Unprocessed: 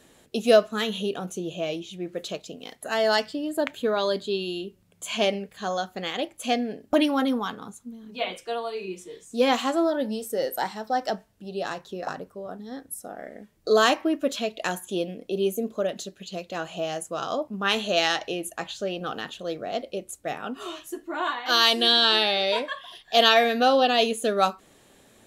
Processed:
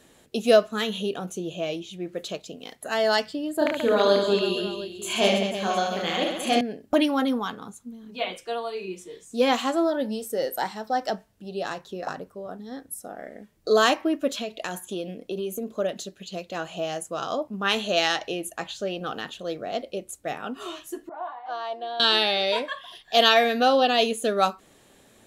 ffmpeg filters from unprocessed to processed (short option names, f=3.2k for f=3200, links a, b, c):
-filter_complex "[0:a]asettb=1/sr,asplit=3[a][b][c];[a]atrim=end=3.584[d];[b]atrim=start=3.58:end=6.61,asetpts=PTS-STARTPTS,afade=t=in:d=0.004:c=qsin,afade=t=out:st=3.026:d=0.004:c=qsin,aecho=1:1:30|72|130.8|213.1|328.4|489.7|715.6:0.794|0.631|0.501|0.398|0.316|0.251|0.2,atrim=end_sample=133623[e];[c]atrim=start=6.606[f];[d][e]acrossfade=d=0.004:c1=hsin:c2=qsin[g];[g][f]acrossfade=d=0.004:c1=qsin:c2=hsin,asettb=1/sr,asplit=3[h][i][j];[h]atrim=end=14.404[k];[i]atrim=start=14.4:end=15.79,asetpts=PTS-STARTPTS,afade=t=in:d=0.004:c=qsin,afade=t=out:st=1.386:d=0.004:c=qsin,acompressor=threshold=-26dB:ratio=6:attack=3.2:release=140:knee=1:detection=peak[l];[j]atrim=start=15.786[m];[k][l]acrossfade=d=0.004:c1=hsin:c2=qsin[n];[n][m]acrossfade=d=0.004:c1=qsin:c2=hsin,asettb=1/sr,asplit=3[o][p][q];[o]atrim=end=21.094[r];[p]atrim=start=21.09:end=22,asetpts=PTS-STARTPTS,afade=t=in:d=0.004:c=qsin,afade=t=out:st=0.906:d=0.004:c=qsin,bandpass=f=740:t=q:w=4.1[s];[q]atrim=start=21.996[t];[r][s]acrossfade=d=0.004:c1=hsin:c2=qsin[u];[u][t]acrossfade=d=0.004:c1=qsin:c2=hsin"